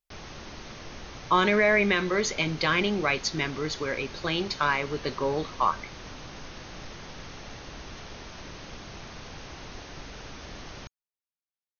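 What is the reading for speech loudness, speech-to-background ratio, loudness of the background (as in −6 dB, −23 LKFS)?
−26.0 LKFS, 16.5 dB, −42.5 LKFS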